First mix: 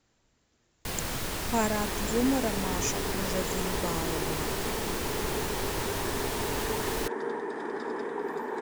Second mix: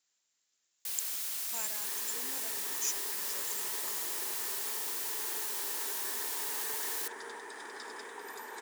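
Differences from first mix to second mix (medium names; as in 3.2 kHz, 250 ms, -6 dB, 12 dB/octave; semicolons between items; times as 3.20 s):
second sound +8.5 dB; master: add differentiator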